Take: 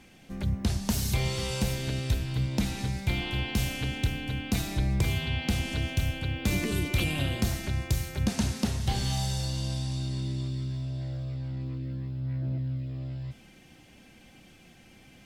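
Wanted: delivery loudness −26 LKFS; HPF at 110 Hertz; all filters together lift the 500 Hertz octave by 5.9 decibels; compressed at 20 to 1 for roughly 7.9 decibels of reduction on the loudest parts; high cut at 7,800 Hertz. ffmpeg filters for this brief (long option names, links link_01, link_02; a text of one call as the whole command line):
ffmpeg -i in.wav -af "highpass=110,lowpass=7800,equalizer=frequency=500:width_type=o:gain=7.5,acompressor=threshold=-30dB:ratio=20,volume=9.5dB" out.wav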